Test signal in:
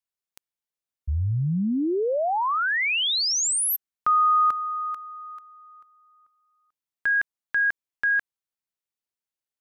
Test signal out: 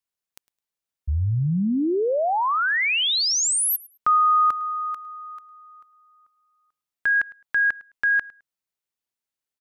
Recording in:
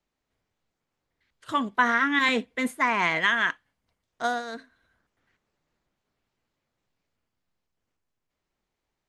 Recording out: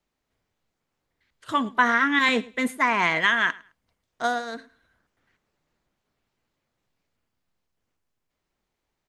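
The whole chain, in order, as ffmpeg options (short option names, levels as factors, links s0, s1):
-af "aecho=1:1:106|212:0.0794|0.0159,volume=1.26"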